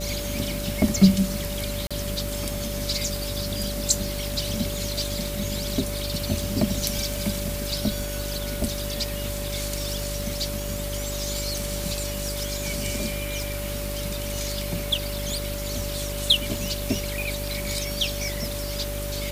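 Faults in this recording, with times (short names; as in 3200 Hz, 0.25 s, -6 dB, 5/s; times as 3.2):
buzz 50 Hz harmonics 9 -32 dBFS
crackle 36/s -30 dBFS
tone 580 Hz -34 dBFS
1.87–1.91 gap 36 ms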